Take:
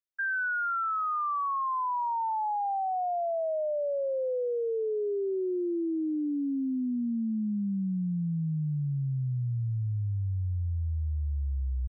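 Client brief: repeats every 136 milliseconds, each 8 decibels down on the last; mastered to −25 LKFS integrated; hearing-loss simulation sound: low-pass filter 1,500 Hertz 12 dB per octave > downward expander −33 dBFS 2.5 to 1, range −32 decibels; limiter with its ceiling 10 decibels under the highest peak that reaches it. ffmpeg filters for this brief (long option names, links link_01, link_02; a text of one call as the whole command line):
ffmpeg -i in.wav -af "alimiter=level_in=12.5dB:limit=-24dB:level=0:latency=1,volume=-12.5dB,lowpass=1500,aecho=1:1:136|272|408|544|680:0.398|0.159|0.0637|0.0255|0.0102,agate=range=-32dB:threshold=-33dB:ratio=2.5,volume=22.5dB" out.wav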